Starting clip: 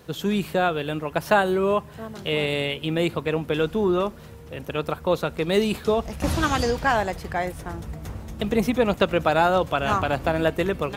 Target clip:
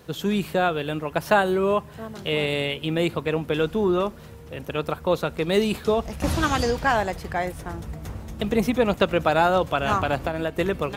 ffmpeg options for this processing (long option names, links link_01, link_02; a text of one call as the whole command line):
ffmpeg -i in.wav -filter_complex "[0:a]asettb=1/sr,asplit=3[link_01][link_02][link_03];[link_01]atrim=end=10.154[link_04];[link_02]atrim=start=10.15:end=10.57,asetpts=PTS-STARTPTS,afade=type=in:duration=0.004:curve=qsin,afade=type=out:start_time=0.416:duration=0.004:curve=qsin,acompressor=threshold=-23dB:ratio=4[link_05];[link_03]atrim=start=10.566[link_06];[link_04][link_05]acrossfade=duration=0.004:curve1=hsin:curve2=qsin[link_07];[link_07][link_06]acrossfade=duration=0.004:curve1=qsin:curve2=hsin" out.wav